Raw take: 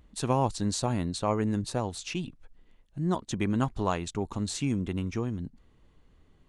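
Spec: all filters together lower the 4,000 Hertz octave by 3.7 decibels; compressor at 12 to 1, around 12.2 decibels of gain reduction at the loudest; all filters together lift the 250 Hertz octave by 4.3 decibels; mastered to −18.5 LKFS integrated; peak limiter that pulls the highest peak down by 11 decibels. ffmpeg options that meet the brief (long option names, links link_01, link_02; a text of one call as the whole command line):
ffmpeg -i in.wav -af "equalizer=frequency=250:width_type=o:gain=5.5,equalizer=frequency=4000:width_type=o:gain=-4.5,acompressor=threshold=-32dB:ratio=12,volume=23dB,alimiter=limit=-9dB:level=0:latency=1" out.wav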